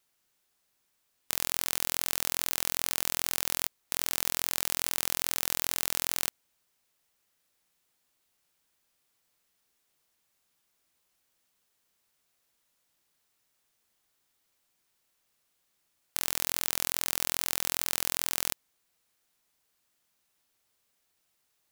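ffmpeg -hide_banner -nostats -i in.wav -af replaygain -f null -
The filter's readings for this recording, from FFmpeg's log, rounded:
track_gain = +18.8 dB
track_peak = 0.586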